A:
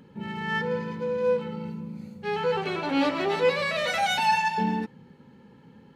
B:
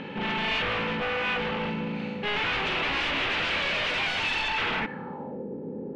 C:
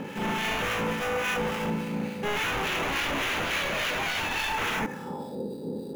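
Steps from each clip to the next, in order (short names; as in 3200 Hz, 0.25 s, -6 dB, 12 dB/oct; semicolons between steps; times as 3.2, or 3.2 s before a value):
per-bin compression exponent 0.6; wavefolder -25.5 dBFS; low-pass sweep 2800 Hz -> 420 Hz, 4.75–5.47
in parallel at -6 dB: sample-rate reducer 4300 Hz, jitter 0%; on the sum: harmonic tremolo 3.5 Hz, depth 50%, crossover 1300 Hz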